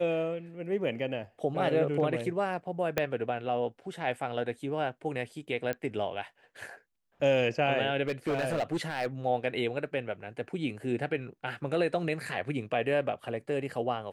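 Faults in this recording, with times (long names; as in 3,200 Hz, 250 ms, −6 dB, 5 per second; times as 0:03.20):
0:02.98: click −12 dBFS
0:05.73: click −19 dBFS
0:08.07–0:09.06: clipping −25.5 dBFS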